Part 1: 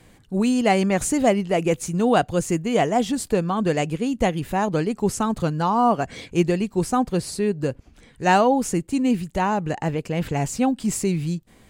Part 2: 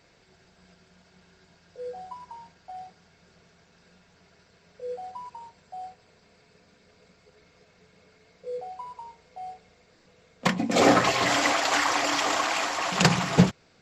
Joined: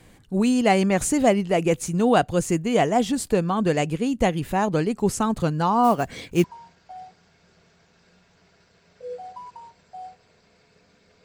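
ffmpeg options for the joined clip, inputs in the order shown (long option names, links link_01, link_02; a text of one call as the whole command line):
ffmpeg -i cue0.wav -i cue1.wav -filter_complex "[0:a]asplit=3[link_01][link_02][link_03];[link_01]afade=type=out:start_time=5.83:duration=0.02[link_04];[link_02]acrusher=bits=6:mode=log:mix=0:aa=0.000001,afade=type=in:start_time=5.83:duration=0.02,afade=type=out:start_time=6.44:duration=0.02[link_05];[link_03]afade=type=in:start_time=6.44:duration=0.02[link_06];[link_04][link_05][link_06]amix=inputs=3:normalize=0,apad=whole_dur=11.24,atrim=end=11.24,atrim=end=6.442[link_07];[1:a]atrim=start=2.228:end=7.03[link_08];[link_07][link_08]acrossfade=duration=0.004:curve1=hsin:curve2=hsin" out.wav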